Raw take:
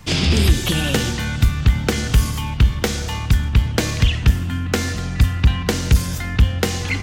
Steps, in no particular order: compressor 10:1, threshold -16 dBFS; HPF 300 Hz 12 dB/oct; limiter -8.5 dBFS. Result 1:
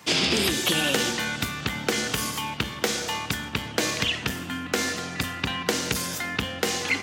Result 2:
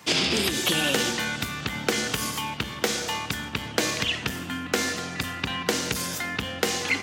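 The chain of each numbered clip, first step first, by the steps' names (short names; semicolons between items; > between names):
HPF > limiter > compressor; limiter > HPF > compressor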